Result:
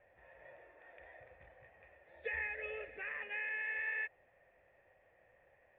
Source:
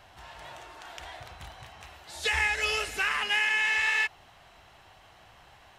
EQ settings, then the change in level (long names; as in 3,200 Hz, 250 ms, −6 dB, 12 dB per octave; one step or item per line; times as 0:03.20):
formant resonators in series e
high-frequency loss of the air 110 metres
+1.5 dB